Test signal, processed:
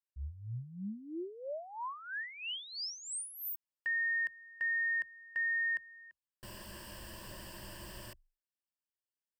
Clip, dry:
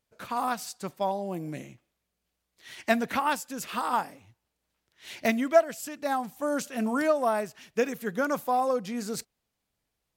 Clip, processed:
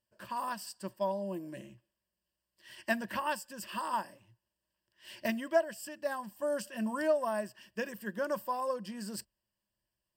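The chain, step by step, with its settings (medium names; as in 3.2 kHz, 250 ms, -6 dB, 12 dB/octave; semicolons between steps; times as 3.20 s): rippled EQ curve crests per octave 1.3, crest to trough 13 dB; trim -8.5 dB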